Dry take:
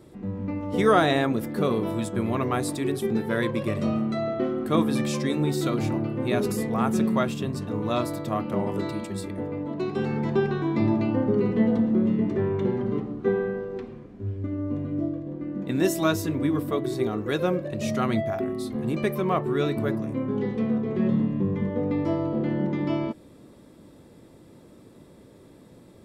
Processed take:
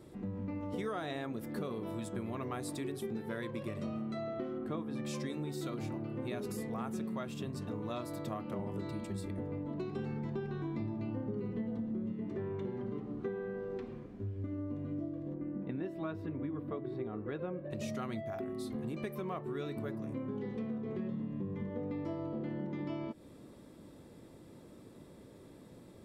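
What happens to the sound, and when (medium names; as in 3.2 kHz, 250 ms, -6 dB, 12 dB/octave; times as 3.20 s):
4.58–5.06 s: low-pass 2 kHz 6 dB/octave
8.59–12.13 s: bass shelf 160 Hz +9.5 dB
15.34–17.71 s: distance through air 480 m
whole clip: compression, threshold -32 dBFS; trim -4 dB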